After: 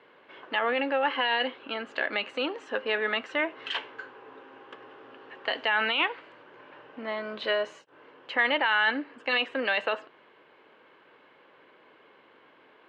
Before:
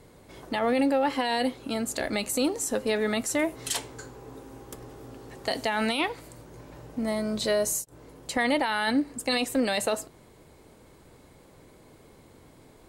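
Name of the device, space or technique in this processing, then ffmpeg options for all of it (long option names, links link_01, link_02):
phone earpiece: -af "highpass=460,equalizer=frequency=700:width_type=q:width=4:gain=-4,equalizer=frequency=1100:width_type=q:width=4:gain=4,equalizer=frequency=1600:width_type=q:width=4:gain=8,equalizer=frequency=2900:width_type=q:width=4:gain=9,lowpass=frequency=3100:width=0.5412,lowpass=frequency=3100:width=1.3066"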